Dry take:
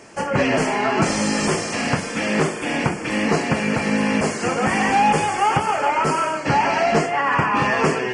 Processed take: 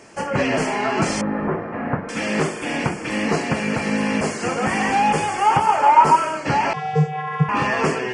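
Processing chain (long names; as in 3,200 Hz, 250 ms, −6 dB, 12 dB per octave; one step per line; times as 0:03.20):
0:01.21–0:02.09: low-pass filter 1,600 Hz 24 dB per octave
0:05.45–0:06.15: parametric band 930 Hz +7 dB → +14.5 dB 0.41 octaves
0:06.73–0:07.49: channel vocoder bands 16, square 152 Hz
level −1.5 dB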